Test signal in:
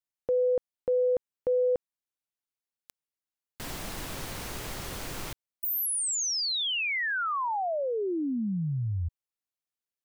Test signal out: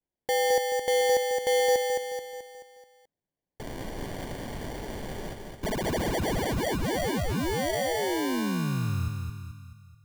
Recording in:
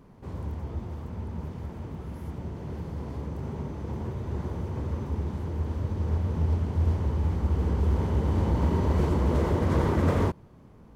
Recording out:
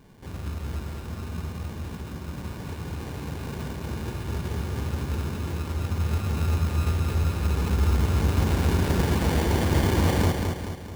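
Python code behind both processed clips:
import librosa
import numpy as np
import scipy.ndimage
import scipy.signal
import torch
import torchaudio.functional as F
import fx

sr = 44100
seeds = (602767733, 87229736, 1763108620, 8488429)

y = fx.sample_hold(x, sr, seeds[0], rate_hz=1300.0, jitter_pct=0)
y = fx.echo_feedback(y, sr, ms=216, feedback_pct=50, wet_db=-4.5)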